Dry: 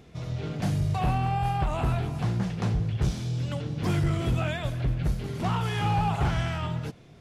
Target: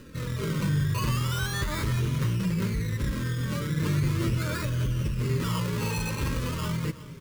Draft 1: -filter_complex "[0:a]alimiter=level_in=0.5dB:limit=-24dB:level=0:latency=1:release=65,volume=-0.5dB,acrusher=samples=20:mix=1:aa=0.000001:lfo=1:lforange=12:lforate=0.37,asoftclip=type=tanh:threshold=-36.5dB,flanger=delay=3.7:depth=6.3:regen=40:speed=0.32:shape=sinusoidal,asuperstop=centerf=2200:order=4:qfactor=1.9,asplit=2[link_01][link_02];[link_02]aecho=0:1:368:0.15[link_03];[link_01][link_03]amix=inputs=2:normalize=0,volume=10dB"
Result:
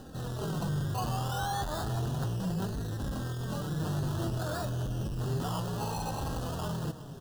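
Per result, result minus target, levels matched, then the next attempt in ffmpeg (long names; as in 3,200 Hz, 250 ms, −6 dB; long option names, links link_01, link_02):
soft clipping: distortion +13 dB; 1,000 Hz band +7.0 dB
-filter_complex "[0:a]alimiter=level_in=0.5dB:limit=-24dB:level=0:latency=1:release=65,volume=-0.5dB,acrusher=samples=20:mix=1:aa=0.000001:lfo=1:lforange=12:lforate=0.37,asoftclip=type=tanh:threshold=-25dB,flanger=delay=3.7:depth=6.3:regen=40:speed=0.32:shape=sinusoidal,asuperstop=centerf=2200:order=4:qfactor=1.9,asplit=2[link_01][link_02];[link_02]aecho=0:1:368:0.15[link_03];[link_01][link_03]amix=inputs=2:normalize=0,volume=10dB"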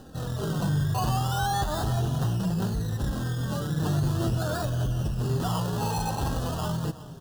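1,000 Hz band +6.5 dB
-filter_complex "[0:a]alimiter=level_in=0.5dB:limit=-24dB:level=0:latency=1:release=65,volume=-0.5dB,acrusher=samples=20:mix=1:aa=0.000001:lfo=1:lforange=12:lforate=0.37,asoftclip=type=tanh:threshold=-25dB,flanger=delay=3.7:depth=6.3:regen=40:speed=0.32:shape=sinusoidal,asuperstop=centerf=740:order=4:qfactor=1.9,asplit=2[link_01][link_02];[link_02]aecho=0:1:368:0.15[link_03];[link_01][link_03]amix=inputs=2:normalize=0,volume=10dB"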